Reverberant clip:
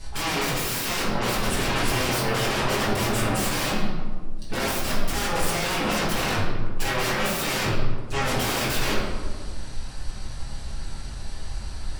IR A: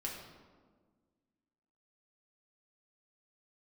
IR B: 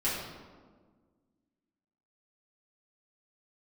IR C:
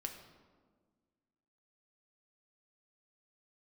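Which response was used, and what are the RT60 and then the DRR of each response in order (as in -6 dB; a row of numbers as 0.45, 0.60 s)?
B; 1.6, 1.6, 1.6 s; -2.5, -10.0, 3.5 dB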